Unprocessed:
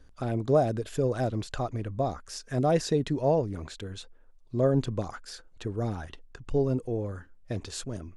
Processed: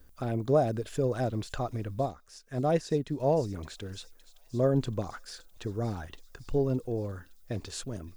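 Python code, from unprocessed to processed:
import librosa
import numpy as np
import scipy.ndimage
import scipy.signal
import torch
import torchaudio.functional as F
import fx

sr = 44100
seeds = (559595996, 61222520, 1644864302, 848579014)

p1 = fx.dmg_noise_colour(x, sr, seeds[0], colour='violet', level_db=-68.0)
p2 = p1 + fx.echo_wet_highpass(p1, sr, ms=565, feedback_pct=62, hz=3800.0, wet_db=-13.0, dry=0)
p3 = fx.upward_expand(p2, sr, threshold_db=-41.0, expansion=1.5, at=(2.06, 3.2))
y = F.gain(torch.from_numpy(p3), -1.5).numpy()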